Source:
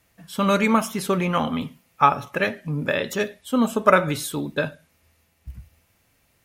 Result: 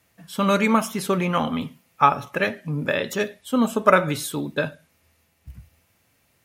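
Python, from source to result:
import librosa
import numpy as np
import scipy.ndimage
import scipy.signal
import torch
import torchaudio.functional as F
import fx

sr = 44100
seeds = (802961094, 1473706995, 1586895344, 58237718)

y = scipy.signal.sosfilt(scipy.signal.butter(2, 71.0, 'highpass', fs=sr, output='sos'), x)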